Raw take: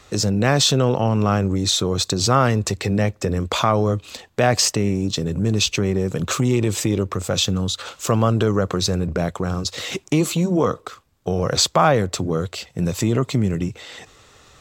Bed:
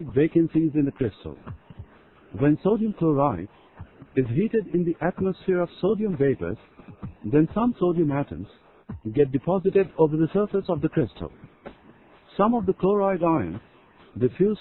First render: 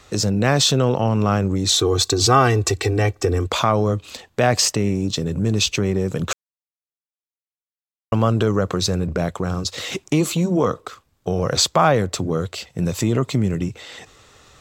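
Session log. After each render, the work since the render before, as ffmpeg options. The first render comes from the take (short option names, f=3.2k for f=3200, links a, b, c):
-filter_complex "[0:a]asettb=1/sr,asplit=3[a][b][c];[a]atrim=end=1.694[d];[b]atrim=start=1.69:end=3.47,asetpts=PTS-STARTPTS,afade=t=in:d=0.004:c=qsin,afade=t=out:st=1.776:d=0.004:c=qsin,aecho=1:1:2.6:0.99,atrim=end_sample=78498[e];[c]atrim=start=3.466[f];[d][e]acrossfade=d=0.004:c1=hsin:c2=qsin[g];[g][f]acrossfade=d=0.004:c1=qsin:c2=hsin,asplit=3[h][i][j];[h]atrim=end=6.33,asetpts=PTS-STARTPTS,afade=t=out:st=6.326:d=0.004:c=hsin[k];[i]atrim=start=6.33:end=8.12,asetpts=PTS-STARTPTS,volume=0[l];[j]atrim=start=8.12,asetpts=PTS-STARTPTS,afade=t=in:d=0.004:c=hsin[m];[k][l][m]concat=n=3:v=0:a=1"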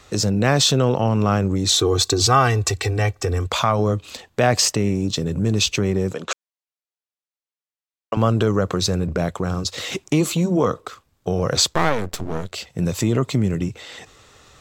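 -filter_complex "[0:a]asettb=1/sr,asplit=3[a][b][c];[a]atrim=end=2.224[d];[b]atrim=start=2.22:end=3.79,asetpts=PTS-STARTPTS,afade=t=in:d=0.004:c=qsin,afade=t=out:st=1.566:d=0.004:c=qsin,equalizer=f=330:w=1.5:g=-7.5[e];[c]atrim=start=3.786[f];[d][e]acrossfade=d=0.004:c1=hsin:c2=qsin[g];[g][f]acrossfade=d=0.004:c1=qsin:c2=hsin,asettb=1/sr,asplit=3[h][i][j];[h]atrim=end=6.134[k];[i]atrim=start=6.13:end=8.17,asetpts=PTS-STARTPTS,afade=t=in:d=0.004:c=qsin,afade=t=out:st=2.036:d=0.004:c=qsin,highpass=360,lowpass=7.4k[l];[j]atrim=start=8.166[m];[k][l]acrossfade=d=0.004:c1=hsin:c2=qsin[n];[n][m]acrossfade=d=0.004:c1=qsin:c2=hsin,asettb=1/sr,asplit=3[o][p][q];[o]atrim=end=11.734[r];[p]atrim=start=11.73:end=12.52,asetpts=PTS-STARTPTS,afade=t=in:d=0.004:c=qsin,afade=t=out:st=0.786:d=0.004:c=qsin,aeval=exprs='max(val(0),0)':c=same[s];[q]atrim=start=12.516[t];[r][s]acrossfade=d=0.004:c1=hsin:c2=qsin[u];[u][t]acrossfade=d=0.004:c1=qsin:c2=hsin"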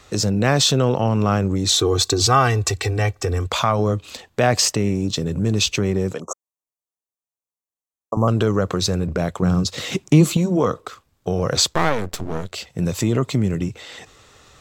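-filter_complex "[0:a]asettb=1/sr,asplit=3[a][b][c];[a]atrim=end=6.204[d];[b]atrim=start=6.2:end=8.28,asetpts=PTS-STARTPTS,afade=t=in:d=0.004:c=qsin,afade=t=out:st=2.076:d=0.004:c=qsin,asuperstop=centerf=2700:order=20:qfactor=0.6[e];[c]atrim=start=8.276[f];[d][e]acrossfade=d=0.004:c1=hsin:c2=qsin[g];[g][f]acrossfade=d=0.004:c1=qsin:c2=hsin,asettb=1/sr,asplit=3[h][i][j];[h]atrim=end=9.424[k];[i]atrim=start=9.42:end=10.37,asetpts=PTS-STARTPTS,afade=t=in:d=0.004:c=qsin,afade=t=out:st=0.946:d=0.004:c=qsin,equalizer=f=170:w=1:g=9[l];[j]atrim=start=10.366[m];[k][l]acrossfade=d=0.004:c1=hsin:c2=qsin[n];[n][m]acrossfade=d=0.004:c1=qsin:c2=hsin"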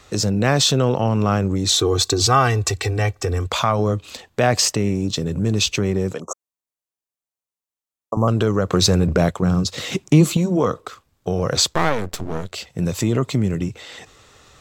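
-filter_complex "[0:a]asplit=3[a][b][c];[a]afade=t=out:st=8.72:d=0.02[d];[b]acontrast=40,afade=t=in:st=8.72:d=0.02,afade=t=out:st=9.3:d=0.02[e];[c]afade=t=in:st=9.3:d=0.02[f];[d][e][f]amix=inputs=3:normalize=0"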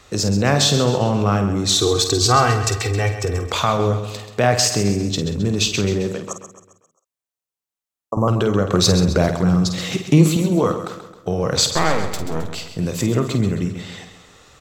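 -filter_complex "[0:a]asplit=2[a][b];[b]adelay=50,volume=-9dB[c];[a][c]amix=inputs=2:normalize=0,aecho=1:1:133|266|399|532|665:0.299|0.14|0.0659|0.031|0.0146"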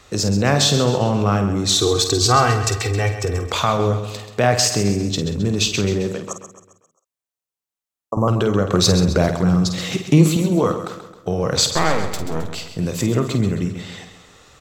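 -af anull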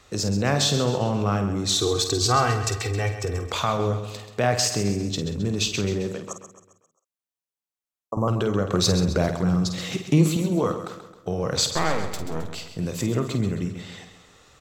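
-af "volume=-5.5dB"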